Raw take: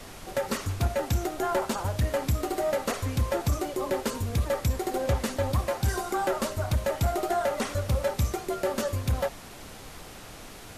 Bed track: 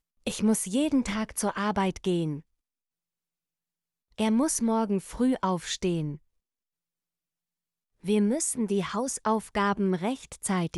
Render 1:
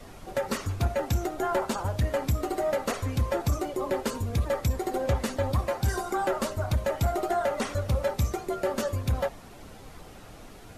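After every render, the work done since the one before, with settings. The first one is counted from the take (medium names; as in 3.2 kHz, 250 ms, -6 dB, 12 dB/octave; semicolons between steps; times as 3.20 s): noise reduction 8 dB, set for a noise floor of -45 dBFS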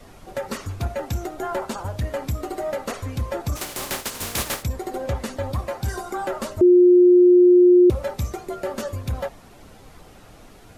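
3.55–4.62 s: spectral contrast reduction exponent 0.31; 6.61–7.90 s: bleep 357 Hz -9 dBFS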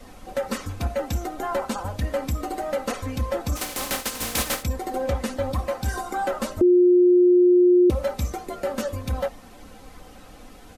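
comb 3.9 ms, depth 52%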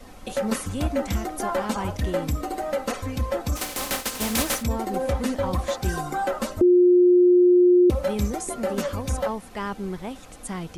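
add bed track -5 dB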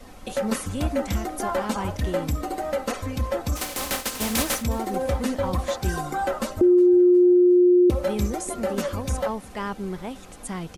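feedback delay 362 ms, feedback 48%, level -22.5 dB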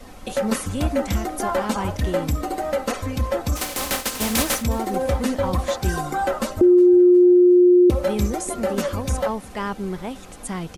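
trim +3 dB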